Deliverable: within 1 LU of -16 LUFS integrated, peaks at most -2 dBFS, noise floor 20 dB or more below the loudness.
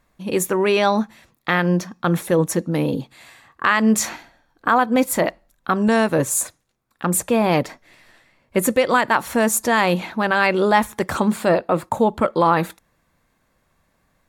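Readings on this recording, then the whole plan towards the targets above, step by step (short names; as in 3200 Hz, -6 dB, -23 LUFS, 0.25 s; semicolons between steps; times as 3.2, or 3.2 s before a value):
loudness -19.5 LUFS; peak -4.5 dBFS; loudness target -16.0 LUFS
-> gain +3.5 dB; limiter -2 dBFS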